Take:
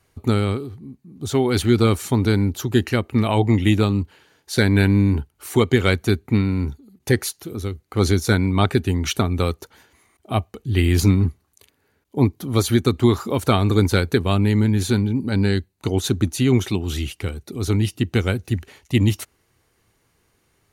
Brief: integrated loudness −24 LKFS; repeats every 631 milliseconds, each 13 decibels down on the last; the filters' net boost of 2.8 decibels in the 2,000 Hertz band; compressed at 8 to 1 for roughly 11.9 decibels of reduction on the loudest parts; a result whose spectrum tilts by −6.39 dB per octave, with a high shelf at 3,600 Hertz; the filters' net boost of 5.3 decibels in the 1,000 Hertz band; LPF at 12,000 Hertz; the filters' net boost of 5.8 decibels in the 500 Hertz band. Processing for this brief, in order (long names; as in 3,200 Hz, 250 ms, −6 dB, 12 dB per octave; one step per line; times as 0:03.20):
low-pass filter 12,000 Hz
parametric band 500 Hz +7 dB
parametric band 1,000 Hz +4.5 dB
parametric band 2,000 Hz +3.5 dB
high-shelf EQ 3,600 Hz −7 dB
downward compressor 8 to 1, threshold −21 dBFS
repeating echo 631 ms, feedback 22%, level −13 dB
level +3.5 dB